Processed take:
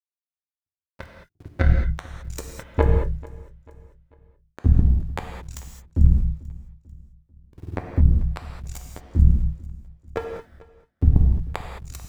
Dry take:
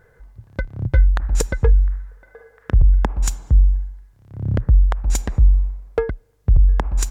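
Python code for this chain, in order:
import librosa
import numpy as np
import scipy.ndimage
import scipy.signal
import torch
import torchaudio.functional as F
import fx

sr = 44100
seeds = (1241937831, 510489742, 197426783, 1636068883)

p1 = fx.dereverb_blind(x, sr, rt60_s=0.88)
p2 = fx.stretch_grains(p1, sr, factor=1.7, grain_ms=53.0)
p3 = np.where(np.abs(p2) >= 10.0 ** (-19.5 / 20.0), p2, 0.0)
p4 = p2 + (p3 * librosa.db_to_amplitude(-3.0))
p5 = fx.power_curve(p4, sr, exponent=3.0)
p6 = fx.echo_feedback(p5, sr, ms=442, feedback_pct=43, wet_db=-21.5)
p7 = fx.rev_gated(p6, sr, seeds[0], gate_ms=240, shape='flat', drr_db=2.5)
y = p7 * librosa.db_to_amplitude(-1.0)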